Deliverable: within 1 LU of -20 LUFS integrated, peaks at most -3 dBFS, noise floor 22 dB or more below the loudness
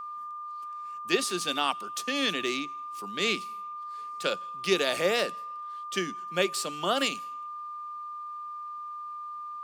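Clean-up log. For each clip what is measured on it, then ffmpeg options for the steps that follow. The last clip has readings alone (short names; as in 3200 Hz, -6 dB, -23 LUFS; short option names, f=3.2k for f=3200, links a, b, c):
steady tone 1200 Hz; tone level -36 dBFS; loudness -31.0 LUFS; peak -10.5 dBFS; loudness target -20.0 LUFS
-> -af "bandreject=f=1.2k:w=30"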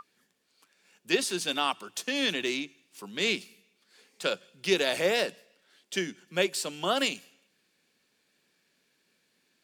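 steady tone none; loudness -29.5 LUFS; peak -11.0 dBFS; loudness target -20.0 LUFS
-> -af "volume=9.5dB,alimiter=limit=-3dB:level=0:latency=1"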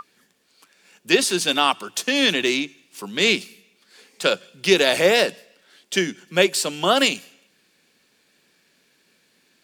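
loudness -20.0 LUFS; peak -3.0 dBFS; noise floor -63 dBFS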